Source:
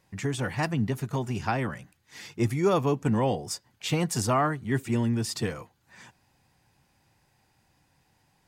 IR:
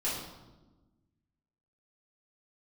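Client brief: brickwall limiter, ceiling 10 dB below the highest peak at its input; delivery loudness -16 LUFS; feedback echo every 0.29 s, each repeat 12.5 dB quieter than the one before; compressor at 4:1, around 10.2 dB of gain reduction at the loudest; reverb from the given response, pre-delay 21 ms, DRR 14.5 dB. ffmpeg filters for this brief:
-filter_complex "[0:a]acompressor=threshold=-32dB:ratio=4,alimiter=level_in=5.5dB:limit=-24dB:level=0:latency=1,volume=-5.5dB,aecho=1:1:290|580|870:0.237|0.0569|0.0137,asplit=2[a][b];[1:a]atrim=start_sample=2205,adelay=21[c];[b][c]afir=irnorm=-1:irlink=0,volume=-21dB[d];[a][d]amix=inputs=2:normalize=0,volume=22.5dB"

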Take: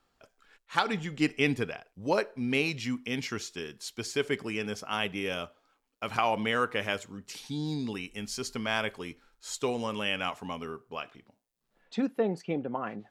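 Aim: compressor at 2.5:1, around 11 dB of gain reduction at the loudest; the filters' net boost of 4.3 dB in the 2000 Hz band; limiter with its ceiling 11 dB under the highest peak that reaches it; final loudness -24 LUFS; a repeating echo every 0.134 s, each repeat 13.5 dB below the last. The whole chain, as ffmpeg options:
-af "equalizer=f=2k:t=o:g=5.5,acompressor=threshold=-36dB:ratio=2.5,alimiter=level_in=2.5dB:limit=-24dB:level=0:latency=1,volume=-2.5dB,aecho=1:1:134|268:0.211|0.0444,volume=15.5dB"

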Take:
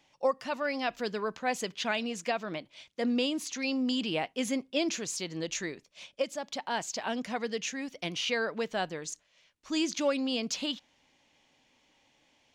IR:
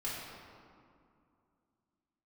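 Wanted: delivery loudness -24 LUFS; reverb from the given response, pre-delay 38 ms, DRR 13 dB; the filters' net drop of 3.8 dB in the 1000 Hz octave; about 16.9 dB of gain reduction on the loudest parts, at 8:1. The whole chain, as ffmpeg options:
-filter_complex "[0:a]equalizer=f=1k:t=o:g=-5.5,acompressor=threshold=-42dB:ratio=8,asplit=2[a][b];[1:a]atrim=start_sample=2205,adelay=38[c];[b][c]afir=irnorm=-1:irlink=0,volume=-16.5dB[d];[a][d]amix=inputs=2:normalize=0,volume=21dB"

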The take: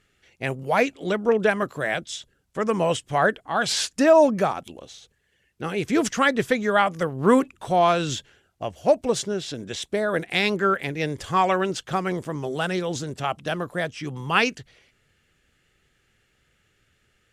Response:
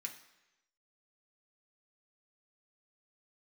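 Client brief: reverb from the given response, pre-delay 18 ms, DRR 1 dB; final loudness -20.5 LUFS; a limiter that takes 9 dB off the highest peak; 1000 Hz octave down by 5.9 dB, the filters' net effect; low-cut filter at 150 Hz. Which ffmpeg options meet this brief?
-filter_complex "[0:a]highpass=150,equalizer=f=1k:t=o:g=-8.5,alimiter=limit=-16dB:level=0:latency=1,asplit=2[a][b];[1:a]atrim=start_sample=2205,adelay=18[c];[b][c]afir=irnorm=-1:irlink=0,volume=1.5dB[d];[a][d]amix=inputs=2:normalize=0,volume=6dB"

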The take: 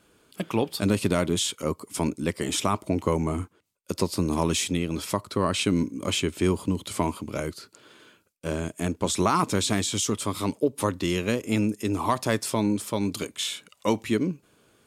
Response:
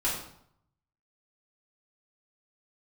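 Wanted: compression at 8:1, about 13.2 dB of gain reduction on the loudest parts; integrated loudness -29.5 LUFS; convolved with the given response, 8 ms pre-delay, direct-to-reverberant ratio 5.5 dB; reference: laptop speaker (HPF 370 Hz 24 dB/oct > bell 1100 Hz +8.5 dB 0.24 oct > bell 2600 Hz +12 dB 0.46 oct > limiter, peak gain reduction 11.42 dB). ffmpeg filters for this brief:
-filter_complex "[0:a]acompressor=threshold=-32dB:ratio=8,asplit=2[a][b];[1:a]atrim=start_sample=2205,adelay=8[c];[b][c]afir=irnorm=-1:irlink=0,volume=-14dB[d];[a][d]amix=inputs=2:normalize=0,highpass=f=370:w=0.5412,highpass=f=370:w=1.3066,equalizer=f=1.1k:t=o:w=0.24:g=8.5,equalizer=f=2.6k:t=o:w=0.46:g=12,volume=10dB,alimiter=limit=-19dB:level=0:latency=1"

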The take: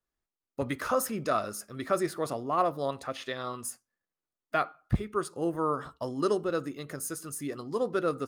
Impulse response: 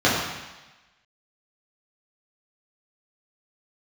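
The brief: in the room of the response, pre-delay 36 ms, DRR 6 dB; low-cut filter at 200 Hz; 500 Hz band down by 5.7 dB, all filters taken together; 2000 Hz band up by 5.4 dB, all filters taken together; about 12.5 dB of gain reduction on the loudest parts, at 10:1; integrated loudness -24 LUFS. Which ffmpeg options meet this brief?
-filter_complex "[0:a]highpass=200,equalizer=f=500:t=o:g=-7.5,equalizer=f=2k:t=o:g=8,acompressor=threshold=-35dB:ratio=10,asplit=2[a][b];[1:a]atrim=start_sample=2205,adelay=36[c];[b][c]afir=irnorm=-1:irlink=0,volume=-27dB[d];[a][d]amix=inputs=2:normalize=0,volume=15.5dB"

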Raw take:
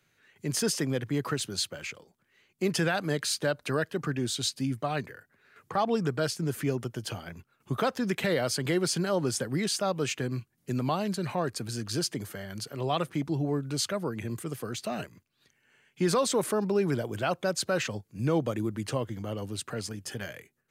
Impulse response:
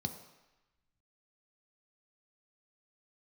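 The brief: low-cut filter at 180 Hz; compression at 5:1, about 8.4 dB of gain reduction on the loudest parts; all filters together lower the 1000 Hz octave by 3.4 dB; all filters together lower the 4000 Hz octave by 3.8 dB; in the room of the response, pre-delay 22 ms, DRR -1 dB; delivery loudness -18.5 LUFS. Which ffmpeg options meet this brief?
-filter_complex "[0:a]highpass=180,equalizer=f=1k:t=o:g=-4.5,equalizer=f=4k:t=o:g=-4.5,acompressor=threshold=-33dB:ratio=5,asplit=2[a][b];[1:a]atrim=start_sample=2205,adelay=22[c];[b][c]afir=irnorm=-1:irlink=0,volume=0.5dB[d];[a][d]amix=inputs=2:normalize=0,volume=12dB"

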